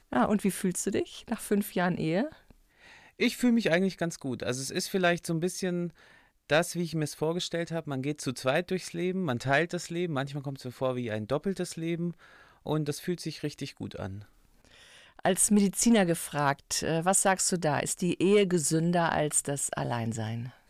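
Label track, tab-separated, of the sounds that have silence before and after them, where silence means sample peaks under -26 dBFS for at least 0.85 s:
3.210000	14.060000	sound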